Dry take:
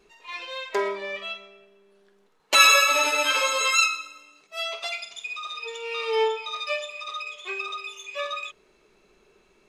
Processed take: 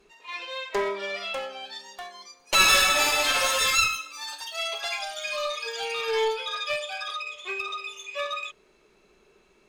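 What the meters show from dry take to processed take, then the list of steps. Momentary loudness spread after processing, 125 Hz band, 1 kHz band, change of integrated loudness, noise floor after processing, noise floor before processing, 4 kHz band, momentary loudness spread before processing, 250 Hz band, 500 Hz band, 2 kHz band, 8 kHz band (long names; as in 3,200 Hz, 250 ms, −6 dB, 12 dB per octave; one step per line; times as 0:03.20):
17 LU, can't be measured, −2.0 dB, −1.5 dB, −62 dBFS, −62 dBFS, 0.0 dB, 18 LU, +1.0 dB, −1.0 dB, −2.0 dB, −0.5 dB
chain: asymmetric clip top −24.5 dBFS
delay with pitch and tempo change per echo 784 ms, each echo +5 semitones, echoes 3, each echo −6 dB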